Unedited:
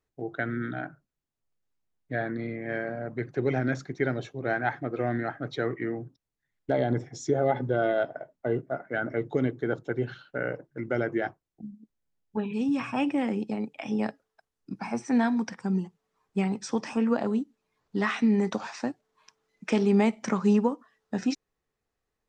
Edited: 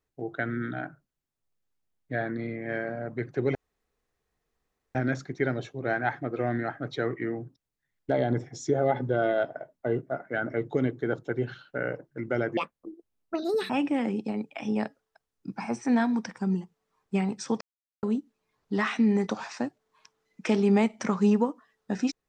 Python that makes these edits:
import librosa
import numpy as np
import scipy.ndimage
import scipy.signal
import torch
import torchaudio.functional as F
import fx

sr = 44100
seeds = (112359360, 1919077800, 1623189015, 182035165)

y = fx.edit(x, sr, fx.insert_room_tone(at_s=3.55, length_s=1.4),
    fx.speed_span(start_s=11.17, length_s=1.76, speed=1.56),
    fx.silence(start_s=16.84, length_s=0.42), tone=tone)